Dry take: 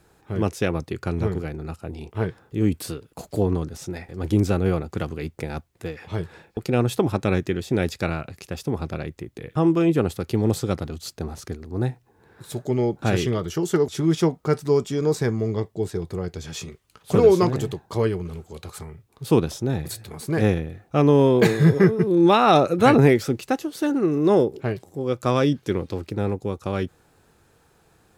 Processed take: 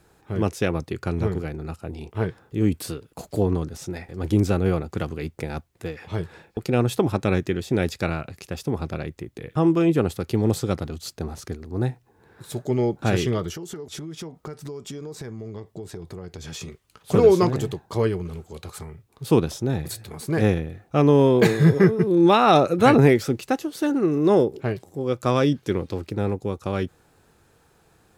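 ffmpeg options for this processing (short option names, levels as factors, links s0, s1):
-filter_complex "[0:a]asettb=1/sr,asplit=3[s0][s1][s2];[s0]atrim=end=13.524[s3];[s1]atrim=start=13.52:end=16.61,asetpts=PTS-STARTPTS,afade=t=in:d=0.004:c=qsin,afade=t=out:st=3.086:d=0.004:c=qsin,acompressor=threshold=0.0282:ratio=20:attack=3.2:release=140:knee=1:detection=peak[s4];[s2]atrim=start=16.606[s5];[s3][s4]acrossfade=d=0.004:c1=hsin:c2=qsin[s6];[s6][s5]acrossfade=d=0.004:c1=qsin:c2=hsin"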